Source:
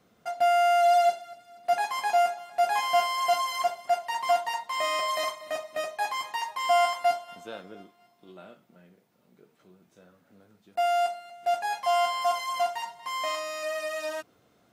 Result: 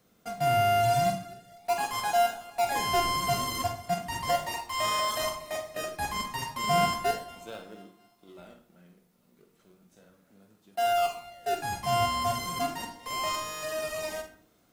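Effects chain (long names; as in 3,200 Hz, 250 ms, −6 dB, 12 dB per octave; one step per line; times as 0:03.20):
high-shelf EQ 5,400 Hz +11.5 dB
in parallel at −8 dB: sample-and-hold swept by an LFO 37×, swing 100% 0.35 Hz
on the sum: convolution reverb RT60 0.50 s, pre-delay 46 ms, DRR 6.5 dB
level −5 dB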